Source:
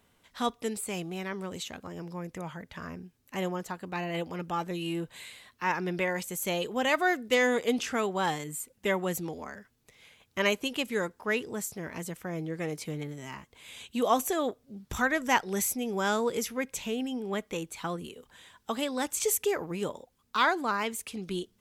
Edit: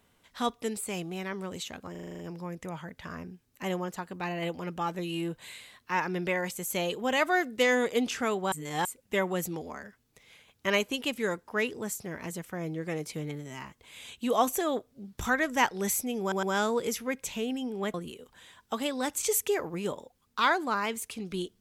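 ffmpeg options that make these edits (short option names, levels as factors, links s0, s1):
-filter_complex "[0:a]asplit=13[s0][s1][s2][s3][s4][s5][s6][s7][s8][s9][s10][s11][s12];[s0]atrim=end=1.952[s13];[s1]atrim=start=1.908:end=1.952[s14];[s2]atrim=start=1.908:end=1.952[s15];[s3]atrim=start=1.908:end=1.952[s16];[s4]atrim=start=1.908:end=1.952[s17];[s5]atrim=start=1.908:end=1.952[s18];[s6]atrim=start=1.908:end=1.952[s19];[s7]atrim=start=1.908:end=8.242[s20];[s8]atrim=start=8.238:end=8.572,asetpts=PTS-STARTPTS,areverse[s21];[s9]atrim=start=8.568:end=16.042[s22];[s10]atrim=start=15.928:end=16.042[s23];[s11]atrim=start=15.928:end=17.442[s24];[s12]atrim=start=17.908[s25];[s13][s14]acrossfade=d=0.004:c1=hsin:c2=hsin[s26];[s26][s15]acrossfade=d=0.004:c1=hsin:c2=hsin[s27];[s27][s16]acrossfade=d=0.004:c1=hsin:c2=hsin[s28];[s28][s17]acrossfade=d=0.004:c1=hsin:c2=hsin[s29];[s29][s18]acrossfade=d=0.004:c1=hsin:c2=hsin[s30];[s30][s19]acrossfade=d=0.004:c1=hsin:c2=hsin[s31];[s31][s20]acrossfade=d=0.004:c1=hsin:c2=hsin[s32];[s32][s21]acrossfade=d=0.004:c1=hsin:c2=hsin[s33];[s33][s22]acrossfade=d=0.004:c1=hsin:c2=hsin[s34];[s34][s23]acrossfade=d=0.004:c1=hsin:c2=hsin[s35];[s35][s24]acrossfade=d=0.004:c1=hsin:c2=hsin[s36];[s36][s25]acrossfade=d=0.004:c1=hsin:c2=hsin"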